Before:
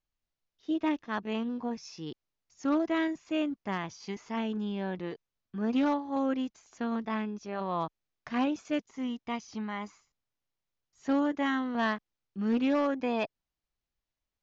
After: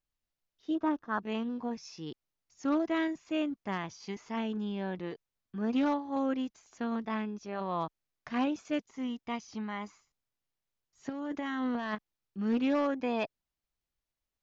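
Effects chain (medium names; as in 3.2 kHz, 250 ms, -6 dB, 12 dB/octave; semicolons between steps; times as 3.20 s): 0.75–1.19 s: resonant high shelf 1.8 kHz -7.5 dB, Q 3; 11.09–11.95 s: compressor with a negative ratio -33 dBFS, ratio -1; trim -1.5 dB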